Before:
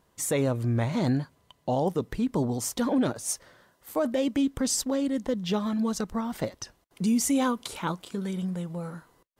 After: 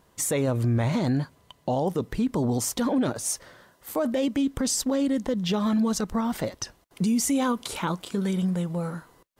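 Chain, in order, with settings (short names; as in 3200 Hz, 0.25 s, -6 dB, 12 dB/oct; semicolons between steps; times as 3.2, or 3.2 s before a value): limiter -23 dBFS, peak gain reduction 5.5 dB; gain +5.5 dB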